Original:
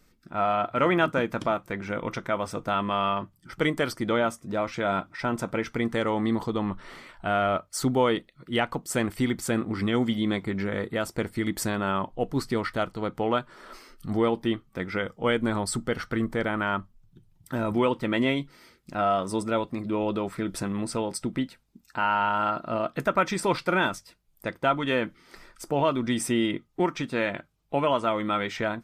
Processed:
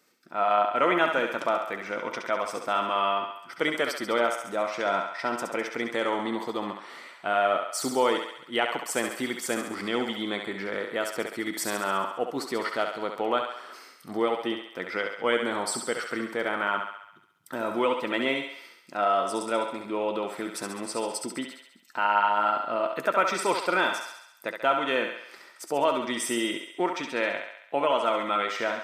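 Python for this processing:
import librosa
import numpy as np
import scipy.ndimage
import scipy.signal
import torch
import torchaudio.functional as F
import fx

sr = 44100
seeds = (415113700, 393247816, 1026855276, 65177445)

p1 = scipy.signal.sosfilt(scipy.signal.butter(2, 350.0, 'highpass', fs=sr, output='sos'), x)
y = p1 + fx.echo_thinned(p1, sr, ms=68, feedback_pct=61, hz=470.0, wet_db=-5.0, dry=0)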